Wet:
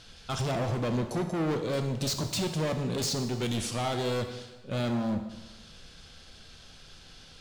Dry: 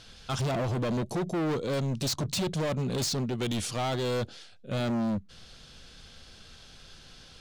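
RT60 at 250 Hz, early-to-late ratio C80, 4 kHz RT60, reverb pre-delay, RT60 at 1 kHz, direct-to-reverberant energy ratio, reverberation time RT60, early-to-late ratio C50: 1.2 s, 10.0 dB, 1.1 s, 7 ms, 1.2 s, 6.0 dB, 1.2 s, 8.5 dB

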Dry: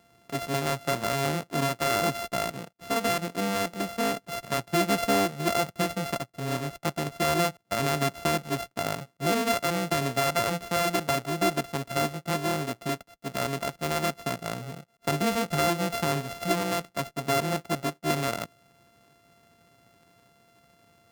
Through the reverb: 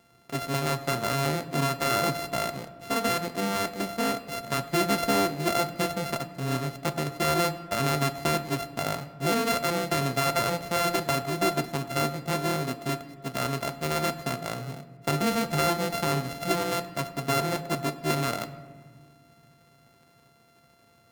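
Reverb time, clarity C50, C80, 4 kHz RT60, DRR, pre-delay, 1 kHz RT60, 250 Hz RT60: 1.6 s, 14.0 dB, 15.0 dB, 0.90 s, 8.0 dB, 8 ms, 1.5 s, 2.6 s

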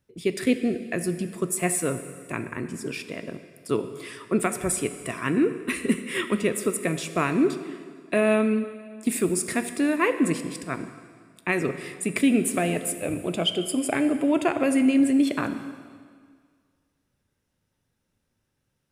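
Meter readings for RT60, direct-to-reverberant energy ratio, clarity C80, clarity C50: 1.9 s, 9.0 dB, 11.5 dB, 10.5 dB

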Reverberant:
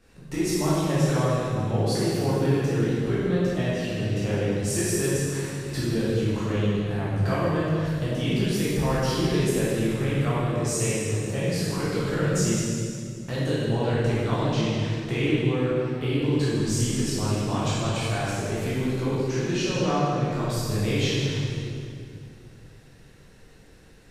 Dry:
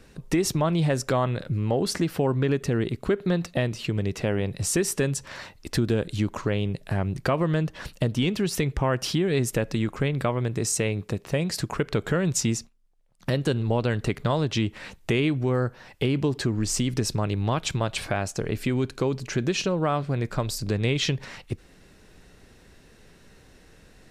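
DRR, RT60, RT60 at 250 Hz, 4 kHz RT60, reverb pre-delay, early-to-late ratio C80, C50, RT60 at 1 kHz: -10.0 dB, 2.3 s, 2.9 s, 2.0 s, 10 ms, -1.5 dB, -4.5 dB, 2.1 s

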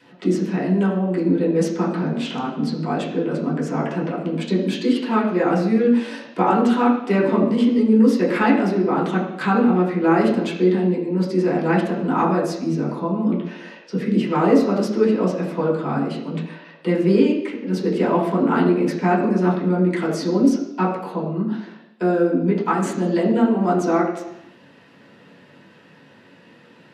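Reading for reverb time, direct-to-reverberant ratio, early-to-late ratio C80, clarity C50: 0.85 s, -7.0 dB, 7.0 dB, 5.0 dB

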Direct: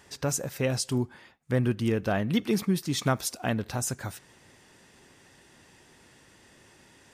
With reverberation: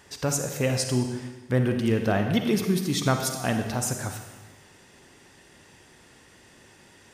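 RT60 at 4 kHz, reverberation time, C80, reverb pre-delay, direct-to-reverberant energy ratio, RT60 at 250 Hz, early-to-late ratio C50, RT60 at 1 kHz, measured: 1.2 s, 1.3 s, 7.5 dB, 39 ms, 5.0 dB, 1.3 s, 5.5 dB, 1.3 s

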